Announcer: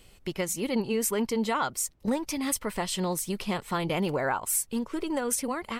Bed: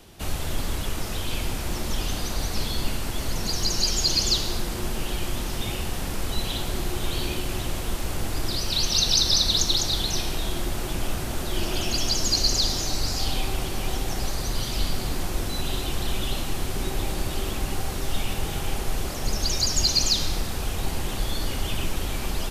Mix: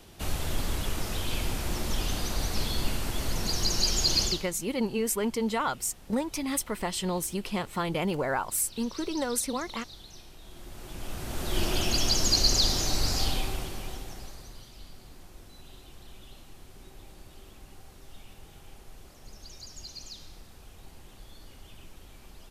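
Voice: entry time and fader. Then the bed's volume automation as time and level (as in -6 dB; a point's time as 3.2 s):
4.05 s, -1.0 dB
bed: 4.24 s -2.5 dB
4.53 s -22.5 dB
10.38 s -22.5 dB
11.58 s -1 dB
13.21 s -1 dB
14.73 s -22 dB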